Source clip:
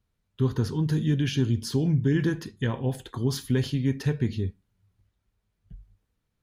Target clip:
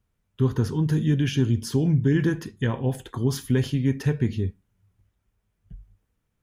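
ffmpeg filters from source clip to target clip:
ffmpeg -i in.wav -af "equalizer=frequency=4200:width_type=o:width=0.5:gain=-7,volume=2.5dB" out.wav

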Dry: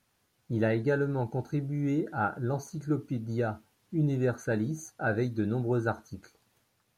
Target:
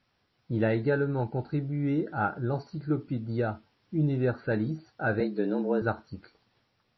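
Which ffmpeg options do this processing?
ffmpeg -i in.wav -filter_complex "[0:a]asettb=1/sr,asplit=3[link_01][link_02][link_03];[link_01]atrim=end=5.204[link_04];[link_02]atrim=start=5.2:end=5.82,asetpts=PTS-STARTPTS,afade=type=in:duration=0.004:curve=qsin,afade=type=out:start_time=0.616:duration=0.004:curve=qsin,afreqshift=93[link_05];[link_03]atrim=start=5.816[link_06];[link_04][link_05]acrossfade=duration=0.004:curve1=hsin:curve2=qsin[link_07];[link_07][link_06]acrossfade=duration=0.004:curve1=qsin:curve2=hsin,volume=1.5dB" -ar 16000 -c:a libmp3lame -b:a 24k out.mp3

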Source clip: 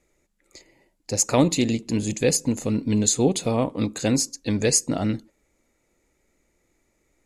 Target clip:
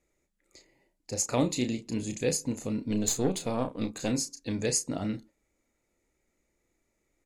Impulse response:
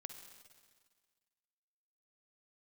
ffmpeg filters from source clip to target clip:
-filter_complex "[0:a]asettb=1/sr,asplit=3[link_01][link_02][link_03];[link_01]atrim=end=2.904[link_04];[link_02]atrim=start=2.9:end=4.1,asetpts=PTS-STARTPTS,afade=type=in:duration=0.004:curve=qsin,afade=type=out:start_time=1.196:duration=0.004:curve=qsin,aeval=exprs='0.501*(cos(1*acos(clip(val(0)/0.501,-1,1)))-cos(1*PI/2))+0.0398*(cos(6*acos(clip(val(0)/0.501,-1,1)))-cos(6*PI/2))':channel_layout=same[link_05];[link_03]atrim=start=4.096[link_06];[link_04][link_05]acrossfade=duration=0.004:curve1=hsin:curve2=qsin[link_07];[link_07][link_06]acrossfade=duration=0.004:curve1=qsin:curve2=hsin,asplit=2[link_08][link_09];[link_09]adelay=32,volume=-8.5dB[link_10];[link_08][link_10]amix=inputs=2:normalize=0,volume=-8.5dB"

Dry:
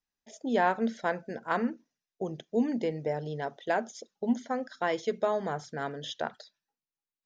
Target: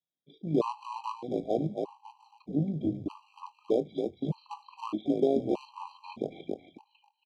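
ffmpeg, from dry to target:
ffmpeg -i in.wav -filter_complex "[0:a]acrossover=split=550|1100[link_01][link_02][link_03];[link_02]acrusher=bits=6:dc=4:mix=0:aa=0.000001[link_04];[link_01][link_04][link_03]amix=inputs=3:normalize=0,asetrate=28595,aresample=44100,atempo=1.54221,asuperstop=centerf=1700:order=12:qfactor=1.3,lowshelf=frequency=480:gain=10,asplit=6[link_05][link_06][link_07][link_08][link_09][link_10];[link_06]adelay=274,afreqshift=-57,volume=-4dB[link_11];[link_07]adelay=548,afreqshift=-114,volume=-12.6dB[link_12];[link_08]adelay=822,afreqshift=-171,volume=-21.3dB[link_13];[link_09]adelay=1096,afreqshift=-228,volume=-29.9dB[link_14];[link_10]adelay=1370,afreqshift=-285,volume=-38.5dB[link_15];[link_05][link_11][link_12][link_13][link_14][link_15]amix=inputs=6:normalize=0,tremolo=f=53:d=0.462,highpass=290,lowpass=4300,asplit=2[link_16][link_17];[link_17]adelay=25,volume=-13dB[link_18];[link_16][link_18]amix=inputs=2:normalize=0,afftfilt=real='re*gt(sin(2*PI*0.81*pts/sr)*(1-2*mod(floor(b*sr/1024/790),2)),0)':imag='im*gt(sin(2*PI*0.81*pts/sr)*(1-2*mod(floor(b*sr/1024/790),2)),0)':win_size=1024:overlap=0.75" out.wav

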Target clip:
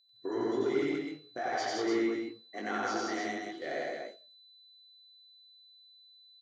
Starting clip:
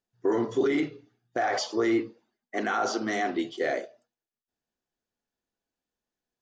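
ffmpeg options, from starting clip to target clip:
ffmpeg -i in.wav -filter_complex "[0:a]asettb=1/sr,asplit=3[link_01][link_02][link_03];[link_01]atrim=end=3.214[link_04];[link_02]atrim=start=3.21:end=3.62,asetpts=PTS-STARTPTS,afade=type=in:duration=0.004:curve=qsin,afade=type=out:start_time=0.406:duration=0.004:curve=qsin,acompressor=threshold=-37dB:ratio=6[link_05];[link_03]atrim=start=3.616[link_06];[link_04][link_05]acrossfade=duration=0.004:curve1=hsin:curve2=qsin[link_07];[link_07][link_06]acrossfade=duration=0.004:curve1=qsin:curve2=hsin,flanger=delay=17.5:depth=4:speed=1.8,aeval=exprs='val(0)+0.00112*sin(2*PI*4000*n/s)':channel_layout=same,aecho=1:1:93.29|163.3|291.5:1|0.891|0.631,volume=-7dB" out.wav

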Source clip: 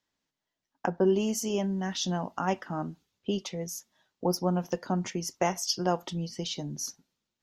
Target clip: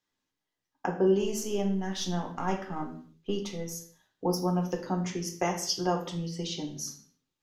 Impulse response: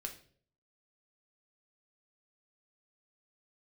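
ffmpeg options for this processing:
-filter_complex "[0:a]asettb=1/sr,asplit=3[link_01][link_02][link_03];[link_01]atrim=end=1.224[link_04];[link_02]atrim=start=1.22:end=3.73,asetpts=PTS-STARTPTS,afade=type=in:duration=0.004:curve=qsin,afade=type=out:start_time=2.506:duration=0.004:curve=qsin,aeval=exprs='if(lt(val(0),0),0.708*val(0),val(0))':channel_layout=same[link_05];[link_03]atrim=start=3.726[link_06];[link_04][link_05]acrossfade=duration=0.004:curve1=hsin:curve2=qsin[link_07];[link_07][link_06]acrossfade=duration=0.004:curve1=qsin:curve2=hsin[link_08];[1:a]atrim=start_sample=2205,afade=type=out:start_time=0.3:duration=0.01,atrim=end_sample=13671,asetrate=33957,aresample=44100[link_09];[link_08][link_09]afir=irnorm=-1:irlink=0"

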